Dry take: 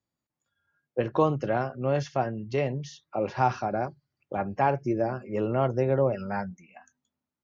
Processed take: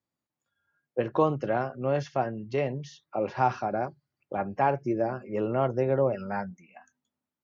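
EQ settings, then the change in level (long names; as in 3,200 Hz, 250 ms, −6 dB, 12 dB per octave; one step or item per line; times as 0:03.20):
low-shelf EQ 93 Hz −9 dB
high-shelf EQ 4,400 Hz −6.5 dB
0.0 dB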